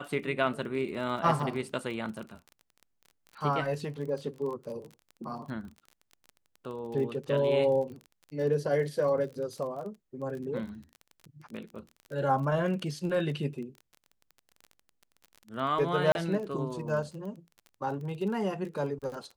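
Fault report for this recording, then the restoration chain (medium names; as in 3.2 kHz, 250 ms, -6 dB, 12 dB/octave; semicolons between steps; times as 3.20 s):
crackle 29 per s -38 dBFS
16.12–16.15 s: dropout 31 ms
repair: de-click; interpolate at 16.12 s, 31 ms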